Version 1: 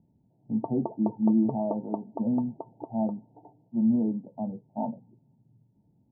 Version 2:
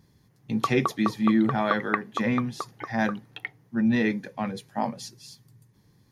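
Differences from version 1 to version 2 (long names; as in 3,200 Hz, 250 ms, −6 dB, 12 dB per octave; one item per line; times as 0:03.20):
background −7.0 dB
master: remove Chebyshev low-pass with heavy ripple 930 Hz, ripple 9 dB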